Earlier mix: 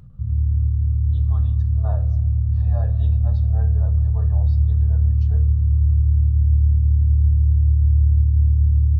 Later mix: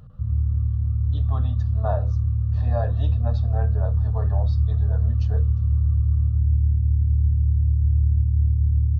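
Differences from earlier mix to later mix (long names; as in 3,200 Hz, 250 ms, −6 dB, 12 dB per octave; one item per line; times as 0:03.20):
speech +9.5 dB
reverb: off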